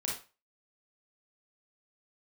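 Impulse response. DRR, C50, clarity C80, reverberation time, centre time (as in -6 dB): -3.0 dB, 2.5 dB, 10.5 dB, 0.30 s, 37 ms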